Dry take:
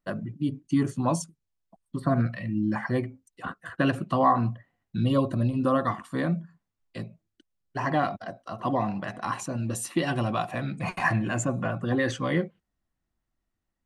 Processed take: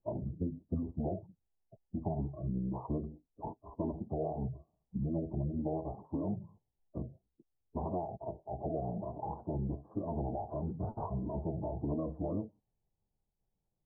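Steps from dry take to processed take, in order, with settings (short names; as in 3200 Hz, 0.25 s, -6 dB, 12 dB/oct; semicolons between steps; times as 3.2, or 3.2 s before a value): compressor 8:1, threshold -31 dBFS, peak gain reduction 15 dB; steep low-pass 1100 Hz 48 dB/oct; formant-preserving pitch shift -9 st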